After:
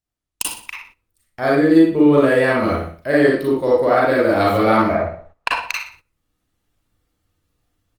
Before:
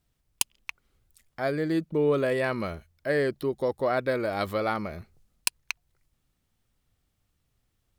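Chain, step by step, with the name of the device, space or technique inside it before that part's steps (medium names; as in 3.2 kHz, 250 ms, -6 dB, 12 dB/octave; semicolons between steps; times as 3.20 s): 4.89–5.60 s: FFT filter 130 Hz 0 dB, 310 Hz -3 dB, 650 Hz +13 dB, 2 kHz +6 dB, 12 kHz -30 dB; feedback delay 60 ms, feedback 36%, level -9 dB; speakerphone in a meeting room (reverberation RT60 0.40 s, pre-delay 34 ms, DRR -5 dB; level rider gain up to 14 dB; gate -42 dBFS, range -14 dB; trim -1 dB; Opus 32 kbps 48 kHz)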